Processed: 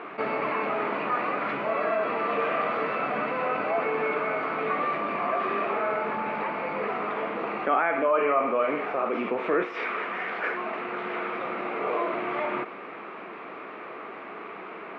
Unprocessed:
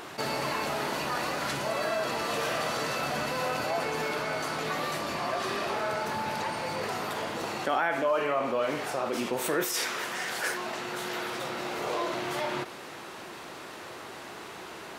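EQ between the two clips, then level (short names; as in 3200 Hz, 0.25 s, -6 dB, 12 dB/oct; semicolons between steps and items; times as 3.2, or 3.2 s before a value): speaker cabinet 190–2600 Hz, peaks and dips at 200 Hz +8 dB, 290 Hz +5 dB, 440 Hz +8 dB, 670 Hz +5 dB, 1200 Hz +10 dB, 2300 Hz +9 dB; -2.0 dB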